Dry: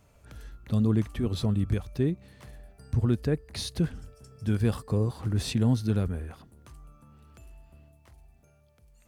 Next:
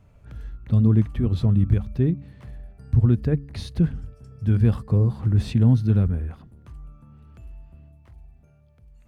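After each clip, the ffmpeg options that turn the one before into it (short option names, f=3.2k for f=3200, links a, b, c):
-af "bass=f=250:g=9,treble=f=4k:g=-10,bandreject=f=70.18:t=h:w=4,bandreject=f=140.36:t=h:w=4,bandreject=f=210.54:t=h:w=4,bandreject=f=280.72:t=h:w=4"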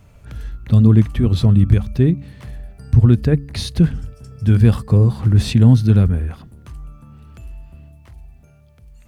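-af "highshelf=f=2.5k:g=8.5,volume=6.5dB"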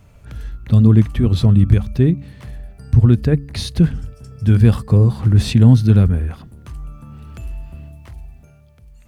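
-af "dynaudnorm=f=130:g=13:m=6dB"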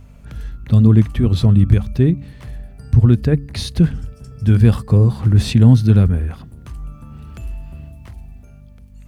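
-af "aeval=exprs='val(0)+0.00891*(sin(2*PI*50*n/s)+sin(2*PI*2*50*n/s)/2+sin(2*PI*3*50*n/s)/3+sin(2*PI*4*50*n/s)/4+sin(2*PI*5*50*n/s)/5)':c=same"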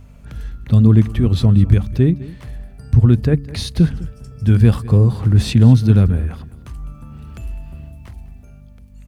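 -af "aecho=1:1:204:0.112"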